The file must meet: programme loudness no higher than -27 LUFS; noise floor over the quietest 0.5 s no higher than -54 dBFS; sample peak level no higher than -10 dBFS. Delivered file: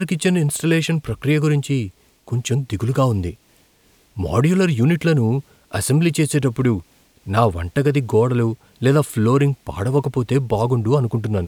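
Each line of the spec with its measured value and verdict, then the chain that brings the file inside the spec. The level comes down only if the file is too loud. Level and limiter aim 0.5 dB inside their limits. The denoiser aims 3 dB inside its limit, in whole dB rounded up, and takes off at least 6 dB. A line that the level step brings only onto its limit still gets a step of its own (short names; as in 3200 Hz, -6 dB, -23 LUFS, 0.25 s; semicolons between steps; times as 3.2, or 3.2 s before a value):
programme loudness -19.0 LUFS: fail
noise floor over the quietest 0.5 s -56 dBFS: OK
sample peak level -2.5 dBFS: fail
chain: gain -8.5 dB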